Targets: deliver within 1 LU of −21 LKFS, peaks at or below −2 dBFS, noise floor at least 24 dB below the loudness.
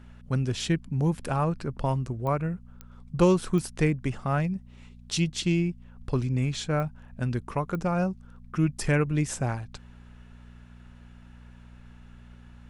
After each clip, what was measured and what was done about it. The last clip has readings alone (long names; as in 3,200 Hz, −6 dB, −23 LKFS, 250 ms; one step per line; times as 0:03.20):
number of clicks 5; mains hum 60 Hz; hum harmonics up to 240 Hz; level of the hum −48 dBFS; integrated loudness −28.0 LKFS; sample peak −9.5 dBFS; target loudness −21.0 LKFS
→ click removal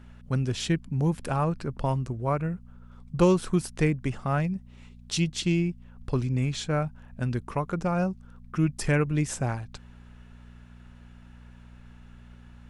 number of clicks 0; mains hum 60 Hz; hum harmonics up to 240 Hz; level of the hum −48 dBFS
→ hum removal 60 Hz, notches 4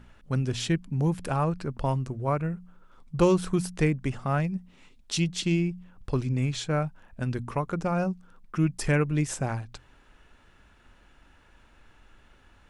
mains hum none found; integrated loudness −28.5 LKFS; sample peak −10.0 dBFS; target loudness −21.0 LKFS
→ level +7.5 dB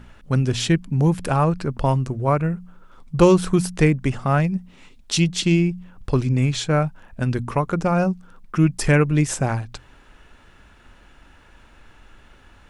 integrated loudness −21.0 LKFS; sample peak −2.5 dBFS; background noise floor −51 dBFS